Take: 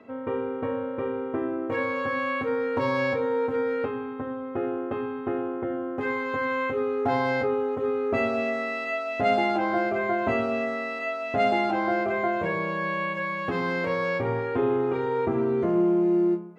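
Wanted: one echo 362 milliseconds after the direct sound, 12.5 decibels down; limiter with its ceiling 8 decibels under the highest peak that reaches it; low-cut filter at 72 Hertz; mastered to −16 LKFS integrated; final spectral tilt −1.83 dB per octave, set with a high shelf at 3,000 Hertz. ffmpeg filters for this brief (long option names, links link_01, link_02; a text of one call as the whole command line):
ffmpeg -i in.wav -af "highpass=72,highshelf=frequency=3000:gain=-4.5,alimiter=limit=-20dB:level=0:latency=1,aecho=1:1:362:0.237,volume=12.5dB" out.wav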